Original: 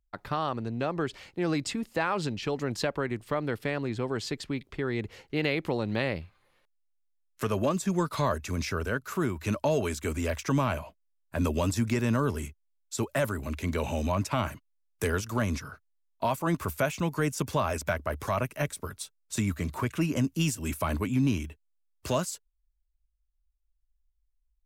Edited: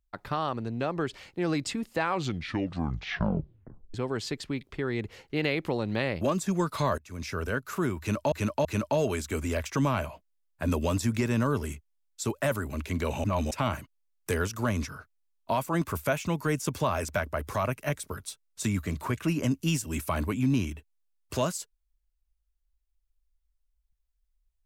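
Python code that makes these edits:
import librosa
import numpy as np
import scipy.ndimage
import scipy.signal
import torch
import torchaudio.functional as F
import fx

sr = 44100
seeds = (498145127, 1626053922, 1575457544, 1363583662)

y = fx.edit(x, sr, fx.tape_stop(start_s=2.01, length_s=1.93),
    fx.cut(start_s=6.21, length_s=1.39),
    fx.fade_in_from(start_s=8.37, length_s=0.48, floor_db=-23.5),
    fx.repeat(start_s=9.38, length_s=0.33, count=3),
    fx.reverse_span(start_s=13.97, length_s=0.27), tone=tone)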